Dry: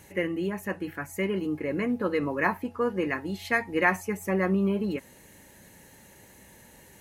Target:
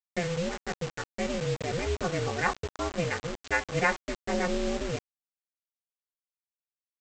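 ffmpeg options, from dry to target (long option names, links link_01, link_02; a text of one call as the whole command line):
ffmpeg -i in.wav -af "aecho=1:1:3.1:0.46,adynamicsmooth=sensitivity=4:basefreq=4400,aeval=exprs='val(0)*sin(2*PI*170*n/s)':channel_layout=same,aresample=16000,acrusher=bits=5:mix=0:aa=0.000001,aresample=44100" out.wav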